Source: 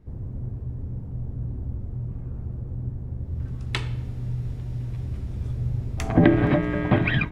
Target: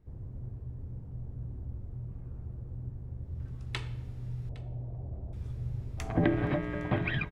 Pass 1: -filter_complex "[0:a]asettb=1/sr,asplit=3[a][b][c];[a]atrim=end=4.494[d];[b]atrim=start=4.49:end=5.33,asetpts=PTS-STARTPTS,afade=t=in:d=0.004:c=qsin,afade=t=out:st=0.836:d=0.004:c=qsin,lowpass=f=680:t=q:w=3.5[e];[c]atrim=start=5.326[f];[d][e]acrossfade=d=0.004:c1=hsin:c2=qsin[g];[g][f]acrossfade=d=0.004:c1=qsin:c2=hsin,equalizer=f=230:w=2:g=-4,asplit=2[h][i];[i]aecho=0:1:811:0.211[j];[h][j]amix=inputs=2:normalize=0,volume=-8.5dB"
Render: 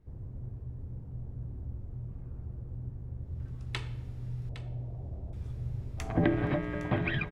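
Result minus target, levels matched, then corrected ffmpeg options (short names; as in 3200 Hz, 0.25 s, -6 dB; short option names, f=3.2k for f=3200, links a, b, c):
echo-to-direct +7.5 dB
-filter_complex "[0:a]asettb=1/sr,asplit=3[a][b][c];[a]atrim=end=4.494[d];[b]atrim=start=4.49:end=5.33,asetpts=PTS-STARTPTS,afade=t=in:d=0.004:c=qsin,afade=t=out:st=0.836:d=0.004:c=qsin,lowpass=f=680:t=q:w=3.5[e];[c]atrim=start=5.326[f];[d][e]acrossfade=d=0.004:c1=hsin:c2=qsin[g];[g][f]acrossfade=d=0.004:c1=qsin:c2=hsin,equalizer=f=230:w=2:g=-4,asplit=2[h][i];[i]aecho=0:1:811:0.0891[j];[h][j]amix=inputs=2:normalize=0,volume=-8.5dB"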